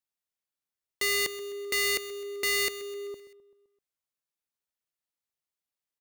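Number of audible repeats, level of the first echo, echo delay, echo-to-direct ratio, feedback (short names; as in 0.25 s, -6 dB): 4, -16.0 dB, 0.129 s, -14.5 dB, 57%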